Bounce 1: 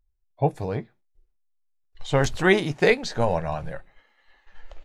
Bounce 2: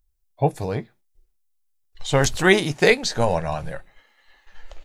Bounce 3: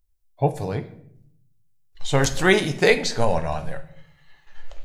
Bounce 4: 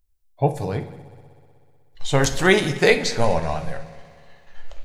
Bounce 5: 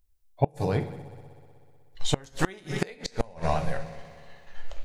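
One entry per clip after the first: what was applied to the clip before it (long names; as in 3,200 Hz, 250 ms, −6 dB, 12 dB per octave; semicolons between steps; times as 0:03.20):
high-shelf EQ 4,600 Hz +11 dB; level +2 dB
rectangular room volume 130 cubic metres, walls mixed, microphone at 0.31 metres; level −1.5 dB
echo machine with several playback heads 62 ms, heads first and third, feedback 69%, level −21 dB; level +1 dB
gate with flip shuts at −9 dBFS, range −29 dB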